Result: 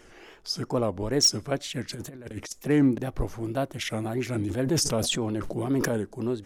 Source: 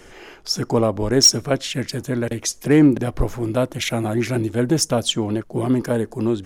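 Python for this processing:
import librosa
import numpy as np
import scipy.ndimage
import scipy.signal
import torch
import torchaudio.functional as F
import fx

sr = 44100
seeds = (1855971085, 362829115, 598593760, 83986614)

y = fx.over_compress(x, sr, threshold_db=-28.0, ratio=-0.5, at=(1.9, 2.52))
y = fx.wow_flutter(y, sr, seeds[0], rate_hz=2.1, depth_cents=130.0)
y = fx.sustainer(y, sr, db_per_s=26.0, at=(4.31, 5.98))
y = F.gain(torch.from_numpy(y), -8.0).numpy()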